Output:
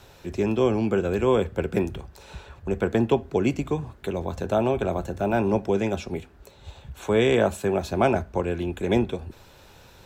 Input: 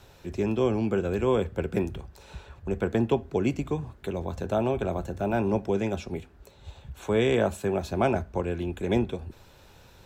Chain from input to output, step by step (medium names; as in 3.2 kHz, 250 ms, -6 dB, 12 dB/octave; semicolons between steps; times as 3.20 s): bass shelf 210 Hz -3 dB; trim +4 dB